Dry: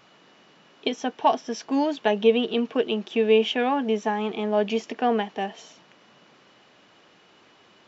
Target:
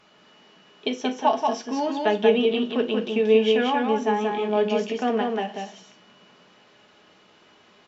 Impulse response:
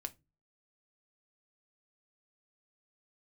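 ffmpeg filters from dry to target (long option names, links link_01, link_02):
-filter_complex "[0:a]aecho=1:1:183:0.668[link_01];[1:a]atrim=start_sample=2205,asetrate=26019,aresample=44100[link_02];[link_01][link_02]afir=irnorm=-1:irlink=0,volume=-1.5dB"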